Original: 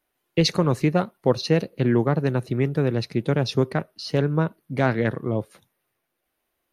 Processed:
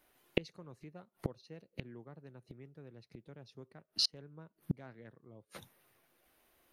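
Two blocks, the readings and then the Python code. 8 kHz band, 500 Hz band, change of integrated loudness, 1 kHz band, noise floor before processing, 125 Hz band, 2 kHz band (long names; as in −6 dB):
−11.0 dB, −24.0 dB, −16.0 dB, −27.5 dB, −78 dBFS, −24.0 dB, −20.5 dB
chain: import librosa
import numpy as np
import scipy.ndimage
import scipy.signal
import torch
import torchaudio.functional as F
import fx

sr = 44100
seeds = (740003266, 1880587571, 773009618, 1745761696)

y = fx.gate_flip(x, sr, shuts_db=-25.0, range_db=-37)
y = y * 10.0 ** (6.0 / 20.0)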